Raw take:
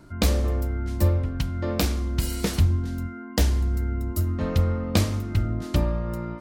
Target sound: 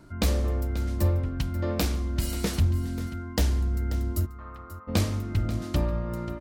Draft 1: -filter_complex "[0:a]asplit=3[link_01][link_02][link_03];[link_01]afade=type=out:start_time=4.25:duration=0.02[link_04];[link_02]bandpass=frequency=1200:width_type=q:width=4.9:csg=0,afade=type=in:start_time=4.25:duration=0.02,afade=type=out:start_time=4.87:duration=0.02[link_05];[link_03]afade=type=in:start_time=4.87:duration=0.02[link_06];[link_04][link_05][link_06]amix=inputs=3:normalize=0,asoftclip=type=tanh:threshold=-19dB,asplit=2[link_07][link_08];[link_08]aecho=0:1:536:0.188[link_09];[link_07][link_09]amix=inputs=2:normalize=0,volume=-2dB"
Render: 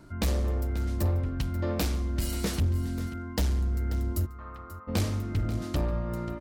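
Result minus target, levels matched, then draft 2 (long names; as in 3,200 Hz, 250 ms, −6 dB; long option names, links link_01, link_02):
soft clipping: distortion +10 dB
-filter_complex "[0:a]asplit=3[link_01][link_02][link_03];[link_01]afade=type=out:start_time=4.25:duration=0.02[link_04];[link_02]bandpass=frequency=1200:width_type=q:width=4.9:csg=0,afade=type=in:start_time=4.25:duration=0.02,afade=type=out:start_time=4.87:duration=0.02[link_05];[link_03]afade=type=in:start_time=4.87:duration=0.02[link_06];[link_04][link_05][link_06]amix=inputs=3:normalize=0,asoftclip=type=tanh:threshold=-11dB,asplit=2[link_07][link_08];[link_08]aecho=0:1:536:0.188[link_09];[link_07][link_09]amix=inputs=2:normalize=0,volume=-2dB"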